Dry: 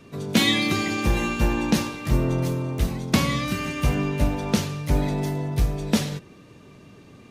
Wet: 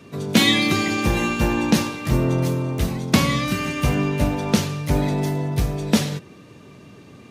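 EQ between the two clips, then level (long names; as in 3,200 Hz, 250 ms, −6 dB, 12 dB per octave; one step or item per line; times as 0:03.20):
high-pass filter 68 Hz
+3.5 dB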